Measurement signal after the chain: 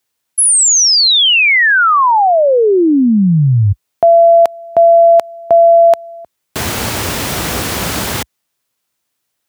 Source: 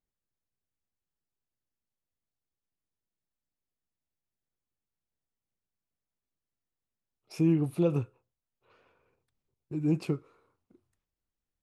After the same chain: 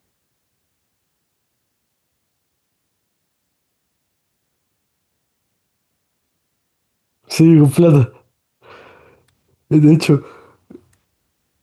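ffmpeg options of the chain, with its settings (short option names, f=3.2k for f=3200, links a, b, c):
-af "highpass=f=62:w=0.5412,highpass=f=62:w=1.3066,alimiter=level_in=24.5dB:limit=-1dB:release=50:level=0:latency=1,volume=-1dB"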